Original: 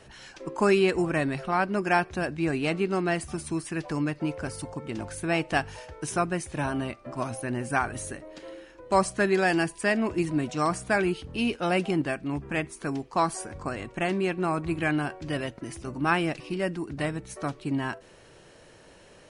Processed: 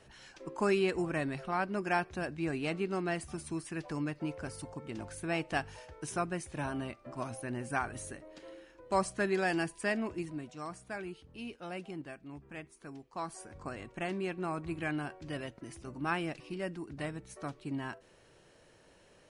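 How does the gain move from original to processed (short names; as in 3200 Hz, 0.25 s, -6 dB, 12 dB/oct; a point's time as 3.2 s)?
9.95 s -7.5 dB
10.53 s -16.5 dB
13.06 s -16.5 dB
13.65 s -9 dB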